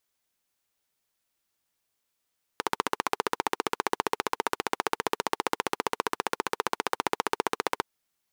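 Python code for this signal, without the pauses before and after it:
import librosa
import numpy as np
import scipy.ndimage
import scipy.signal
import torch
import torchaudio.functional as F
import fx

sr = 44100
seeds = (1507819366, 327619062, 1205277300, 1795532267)

y = fx.engine_single(sr, seeds[0], length_s=5.22, rpm=1800, resonances_hz=(440.0, 900.0))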